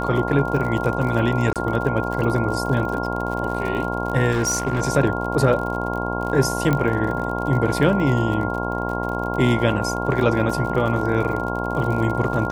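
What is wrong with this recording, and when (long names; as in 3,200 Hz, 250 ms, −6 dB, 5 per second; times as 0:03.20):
mains buzz 60 Hz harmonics 18 −26 dBFS
surface crackle 63 per second −28 dBFS
whistle 1,400 Hz −28 dBFS
0:01.53–0:01.56: drop-out 27 ms
0:04.31–0:04.82: clipping −16.5 dBFS
0:06.73: click −9 dBFS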